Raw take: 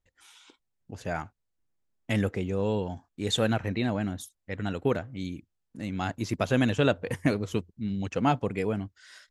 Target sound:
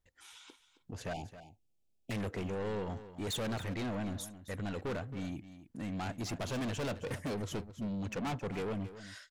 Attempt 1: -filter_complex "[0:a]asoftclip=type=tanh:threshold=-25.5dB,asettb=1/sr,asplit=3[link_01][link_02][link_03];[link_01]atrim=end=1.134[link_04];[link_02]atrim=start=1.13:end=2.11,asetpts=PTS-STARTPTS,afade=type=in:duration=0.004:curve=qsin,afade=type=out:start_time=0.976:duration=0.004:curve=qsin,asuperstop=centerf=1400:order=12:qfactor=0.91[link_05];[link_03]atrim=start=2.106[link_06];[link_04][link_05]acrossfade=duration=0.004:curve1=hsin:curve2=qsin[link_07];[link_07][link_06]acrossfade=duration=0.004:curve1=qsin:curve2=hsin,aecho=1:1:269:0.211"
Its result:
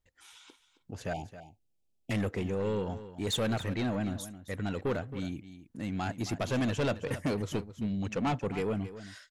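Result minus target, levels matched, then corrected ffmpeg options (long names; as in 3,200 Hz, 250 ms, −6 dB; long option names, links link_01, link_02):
soft clipping: distortion −5 dB
-filter_complex "[0:a]asoftclip=type=tanh:threshold=-34dB,asettb=1/sr,asplit=3[link_01][link_02][link_03];[link_01]atrim=end=1.134[link_04];[link_02]atrim=start=1.13:end=2.11,asetpts=PTS-STARTPTS,afade=type=in:duration=0.004:curve=qsin,afade=type=out:start_time=0.976:duration=0.004:curve=qsin,asuperstop=centerf=1400:order=12:qfactor=0.91[link_05];[link_03]atrim=start=2.106[link_06];[link_04][link_05]acrossfade=duration=0.004:curve1=hsin:curve2=qsin[link_07];[link_07][link_06]acrossfade=duration=0.004:curve1=qsin:curve2=hsin,aecho=1:1:269:0.211"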